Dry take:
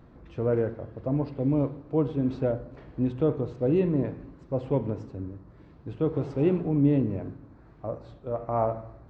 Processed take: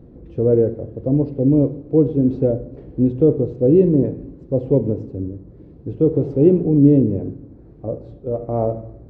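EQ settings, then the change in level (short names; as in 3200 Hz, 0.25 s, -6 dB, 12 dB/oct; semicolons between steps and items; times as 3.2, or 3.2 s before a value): resonant low shelf 720 Hz +14 dB, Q 1.5; notch 630 Hz, Q 16; -5.5 dB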